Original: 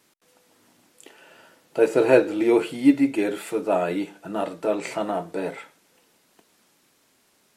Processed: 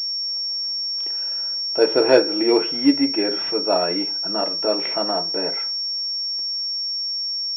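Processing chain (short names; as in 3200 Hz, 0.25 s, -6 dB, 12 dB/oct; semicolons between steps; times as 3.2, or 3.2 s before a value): bell 99 Hz -9.5 dB 2.1 oct; pulse-width modulation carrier 5500 Hz; gain +3 dB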